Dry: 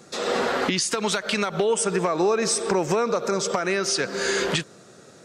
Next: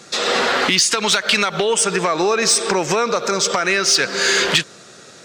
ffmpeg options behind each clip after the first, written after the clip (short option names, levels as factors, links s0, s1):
-filter_complex "[0:a]equalizer=f=3500:w=0.34:g=10.5,asplit=2[s0][s1];[s1]acontrast=85,volume=0.794[s2];[s0][s2]amix=inputs=2:normalize=0,volume=0.447"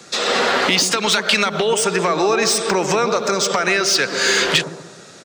-filter_complex "[0:a]acrossover=split=100|1100|4800[s0][s1][s2][s3];[s1]aecho=1:1:131|262|393|524|655:0.531|0.228|0.0982|0.0422|0.0181[s4];[s3]volume=9.44,asoftclip=hard,volume=0.106[s5];[s0][s4][s2][s5]amix=inputs=4:normalize=0"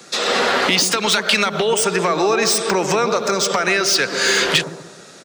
-filter_complex "[0:a]acrossover=split=110[s0][s1];[s0]acrusher=bits=8:mix=0:aa=0.000001[s2];[s1]aexciter=amount=1.6:drive=3.4:freq=10000[s3];[s2][s3]amix=inputs=2:normalize=0"